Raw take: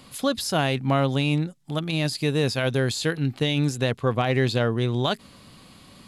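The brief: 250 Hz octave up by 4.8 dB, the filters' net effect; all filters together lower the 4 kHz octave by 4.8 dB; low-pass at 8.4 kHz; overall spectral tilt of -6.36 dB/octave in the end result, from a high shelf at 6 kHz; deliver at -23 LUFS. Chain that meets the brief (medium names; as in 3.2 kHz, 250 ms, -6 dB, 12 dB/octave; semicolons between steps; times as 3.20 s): low-pass 8.4 kHz; peaking EQ 250 Hz +6 dB; peaking EQ 4 kHz -4 dB; treble shelf 6 kHz -6 dB; trim -0.5 dB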